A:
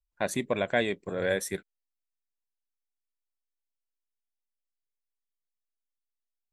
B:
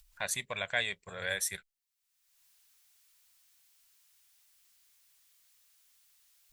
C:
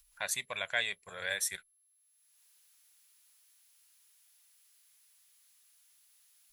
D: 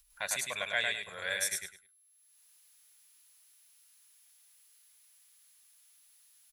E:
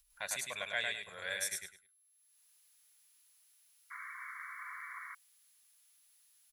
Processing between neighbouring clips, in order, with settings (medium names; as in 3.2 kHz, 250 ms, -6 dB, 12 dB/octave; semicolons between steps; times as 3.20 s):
amplifier tone stack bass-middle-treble 10-0-10; in parallel at -1 dB: upward compressor, threshold -41 dBFS; on the sum: trim -1.5 dB
bass shelf 380 Hz -9 dB; wow and flutter 25 cents; whistle 11 kHz -69 dBFS
feedback delay 103 ms, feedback 22%, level -3.5 dB
painted sound noise, 3.90–5.15 s, 1–2.3 kHz -42 dBFS; trim -4.5 dB